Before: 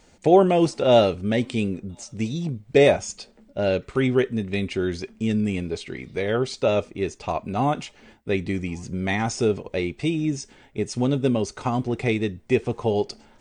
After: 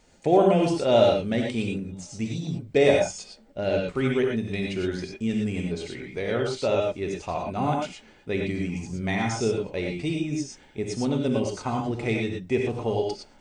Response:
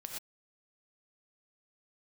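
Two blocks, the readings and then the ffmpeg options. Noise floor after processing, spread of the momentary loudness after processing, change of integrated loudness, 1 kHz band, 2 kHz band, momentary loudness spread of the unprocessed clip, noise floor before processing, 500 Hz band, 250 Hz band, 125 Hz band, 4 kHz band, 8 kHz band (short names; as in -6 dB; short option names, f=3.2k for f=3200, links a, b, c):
-54 dBFS, 12 LU, -2.5 dB, -2.5 dB, -2.0 dB, 13 LU, -55 dBFS, -2.0 dB, -2.5 dB, -2.5 dB, -2.0 dB, -2.0 dB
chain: -filter_complex "[1:a]atrim=start_sample=2205,afade=t=out:st=0.17:d=0.01,atrim=end_sample=7938[a];[0:a][a]afir=irnorm=-1:irlink=0"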